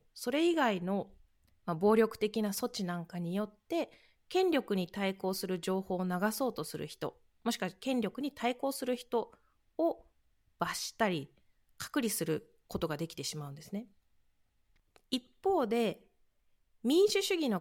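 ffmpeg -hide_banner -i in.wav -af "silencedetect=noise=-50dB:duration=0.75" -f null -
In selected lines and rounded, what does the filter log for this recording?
silence_start: 13.85
silence_end: 14.96 | silence_duration: 1.12
silence_start: 15.97
silence_end: 16.84 | silence_duration: 0.87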